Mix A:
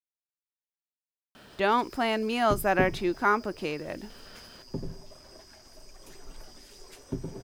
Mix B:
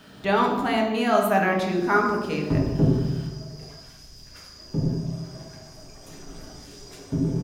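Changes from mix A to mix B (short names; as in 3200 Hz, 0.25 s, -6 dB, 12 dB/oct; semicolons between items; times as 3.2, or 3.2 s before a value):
speech: entry -1.35 s; reverb: on, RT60 1.1 s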